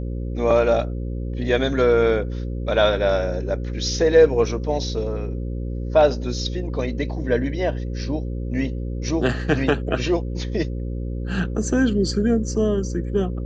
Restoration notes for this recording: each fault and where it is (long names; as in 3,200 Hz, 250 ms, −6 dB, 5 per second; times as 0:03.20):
mains buzz 60 Hz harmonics 9 −27 dBFS